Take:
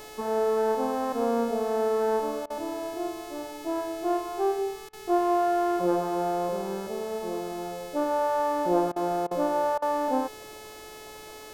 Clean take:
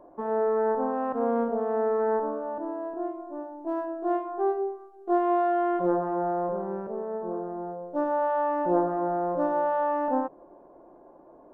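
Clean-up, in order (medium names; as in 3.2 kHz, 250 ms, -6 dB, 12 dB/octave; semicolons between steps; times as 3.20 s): de-hum 430.5 Hz, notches 38; interpolate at 2.46/4.89/8.92/9.27/9.78 s, 40 ms; expander -36 dBFS, range -21 dB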